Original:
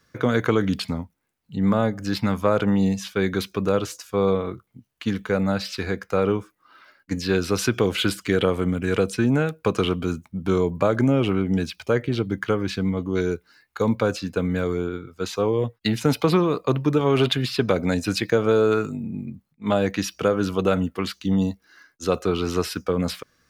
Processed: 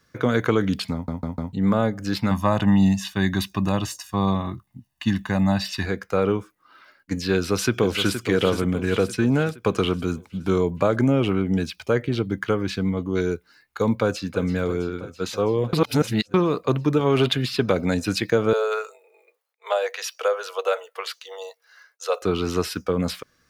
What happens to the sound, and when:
0.93 stutter in place 0.15 s, 4 plays
2.31–5.86 comb 1.1 ms, depth 88%
7.35–8.14 echo throw 0.47 s, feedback 55%, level -9 dB
13.96–14.39 echo throw 0.33 s, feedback 80%, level -14.5 dB
15.73–16.34 reverse
18.53–22.22 steep high-pass 450 Hz 72 dB/oct

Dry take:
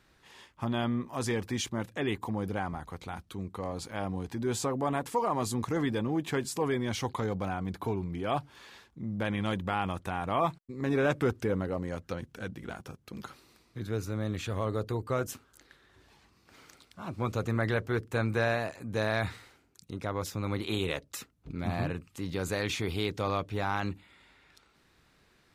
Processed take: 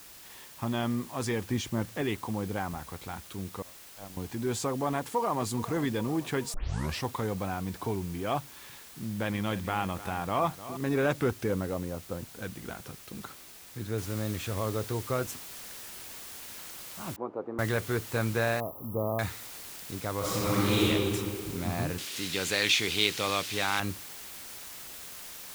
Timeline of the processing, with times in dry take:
1.48–2.02 tilt -1.5 dB/oct
3.62–4.17 gate -32 dBFS, range -50 dB
4.98–5.46 echo throw 0.42 s, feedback 65%, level -15.5 dB
6.54 tape start 0.50 s
8.39–10.77 feedback echo 0.303 s, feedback 35%, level -14 dB
11.85–12.42 LPF 1100 Hz
13.98 noise floor step -50 dB -44 dB
17.16–17.59 Chebyshev band-pass 310–900 Hz
18.6–19.19 brick-wall FIR band-stop 1300–11000 Hz
20.18–20.84 reverb throw, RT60 2.3 s, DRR -8 dB
21.98–23.8 weighting filter D

